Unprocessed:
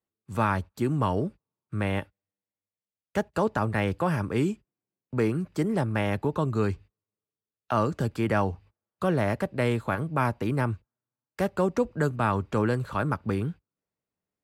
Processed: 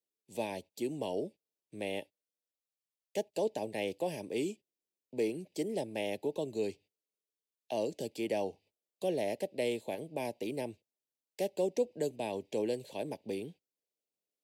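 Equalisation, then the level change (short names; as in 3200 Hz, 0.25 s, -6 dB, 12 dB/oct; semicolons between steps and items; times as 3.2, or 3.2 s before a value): HPF 440 Hz 12 dB/oct; Butterworth band-stop 1300 Hz, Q 0.61; -1.0 dB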